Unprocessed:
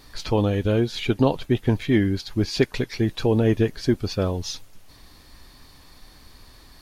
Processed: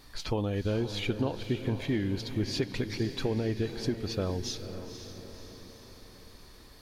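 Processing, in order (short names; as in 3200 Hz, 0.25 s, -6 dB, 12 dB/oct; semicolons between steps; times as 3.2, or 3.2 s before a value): compressor, threshold -21 dBFS, peak gain reduction 8.5 dB; on a send: diffused feedback echo 0.511 s, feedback 54%, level -10 dB; on the sum: gain -5 dB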